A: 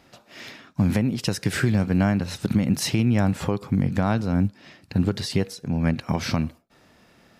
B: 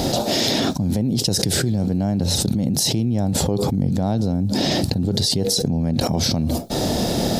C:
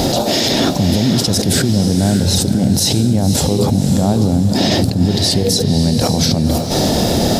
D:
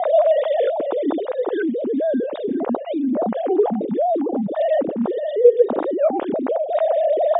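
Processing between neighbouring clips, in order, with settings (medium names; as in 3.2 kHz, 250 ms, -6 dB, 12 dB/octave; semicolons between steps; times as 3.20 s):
high-order bell 1.7 kHz -15 dB; level flattener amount 100%; trim -3.5 dB
peak limiter -12 dBFS, peak gain reduction 10 dB; echo that smears into a reverb 556 ms, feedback 42%, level -7 dB; trim +6.5 dB
formants replaced by sine waves; band-pass filter 600 Hz, Q 1.6; trim -1 dB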